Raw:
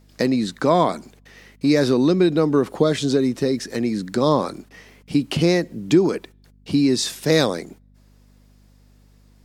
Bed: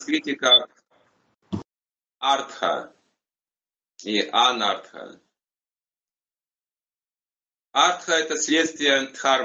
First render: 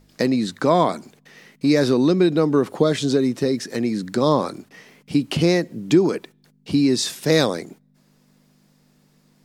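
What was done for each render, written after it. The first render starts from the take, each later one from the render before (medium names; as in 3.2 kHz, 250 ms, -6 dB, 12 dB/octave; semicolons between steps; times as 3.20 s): de-hum 50 Hz, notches 2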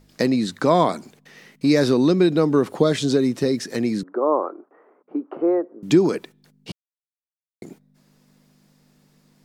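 4.03–5.83 s: elliptic band-pass 330–1300 Hz, stop band 80 dB; 6.72–7.62 s: mute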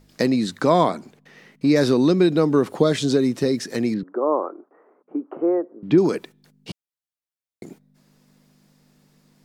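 0.89–1.76 s: treble shelf 3.8 kHz -8.5 dB; 3.94–5.98 s: distance through air 360 m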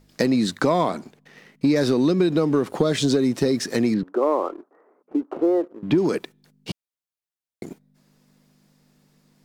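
compression 6:1, threshold -19 dBFS, peak gain reduction 8.5 dB; waveshaping leveller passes 1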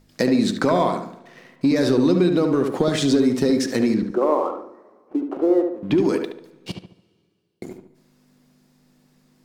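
filtered feedback delay 72 ms, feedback 43%, low-pass 2.2 kHz, level -5 dB; two-slope reverb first 0.26 s, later 2.2 s, from -18 dB, DRR 14.5 dB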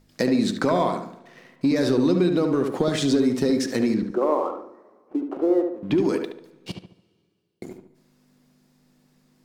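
trim -2.5 dB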